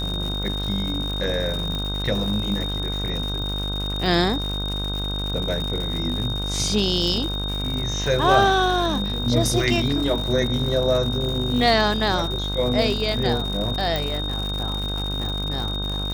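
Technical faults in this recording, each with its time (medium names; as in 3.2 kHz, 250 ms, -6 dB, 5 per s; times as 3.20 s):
buzz 50 Hz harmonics 32 -28 dBFS
crackle 170 per s -27 dBFS
whine 3.7 kHz -28 dBFS
1.75 s: pop -16 dBFS
13.96 s: pop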